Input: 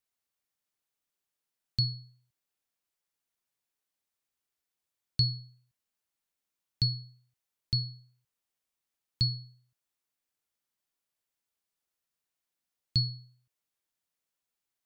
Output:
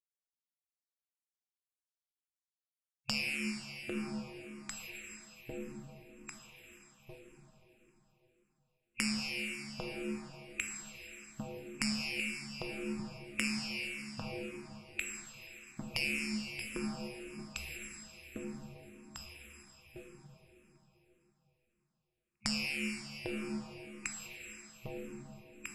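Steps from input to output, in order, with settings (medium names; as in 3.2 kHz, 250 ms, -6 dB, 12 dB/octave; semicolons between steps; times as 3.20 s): treble shelf 5.3 kHz -11.5 dB; echo whose repeats swap between lows and highs 461 ms, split 1.6 kHz, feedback 55%, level -5 dB; waveshaping leveller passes 5; compression 6:1, threshold -31 dBFS, peak gain reduction 11.5 dB; in parallel at -9 dB: wavefolder -28.5 dBFS; on the sum: Chebyshev shaper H 6 -35 dB, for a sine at -17.5 dBFS; spectral gate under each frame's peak -15 dB weak; plate-style reverb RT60 2.3 s, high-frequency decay 0.95×, DRR 0 dB; speed mistake 78 rpm record played at 45 rpm; barber-pole phaser -1.8 Hz; trim +5.5 dB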